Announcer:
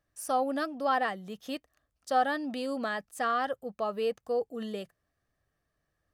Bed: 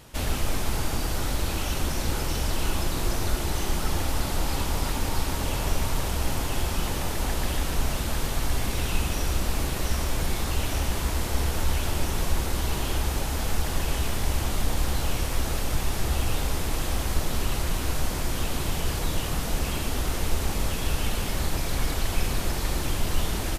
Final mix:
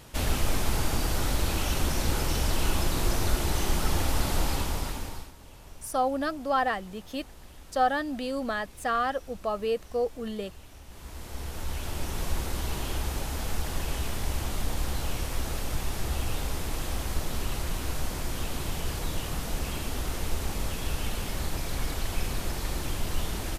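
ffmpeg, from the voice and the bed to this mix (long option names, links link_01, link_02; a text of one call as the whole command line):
ffmpeg -i stem1.wav -i stem2.wav -filter_complex "[0:a]adelay=5650,volume=2dB[link_01];[1:a]volume=17.5dB,afade=type=out:start_time=4.4:duration=0.92:silence=0.0794328,afade=type=in:start_time=10.86:duration=1.46:silence=0.133352[link_02];[link_01][link_02]amix=inputs=2:normalize=0" out.wav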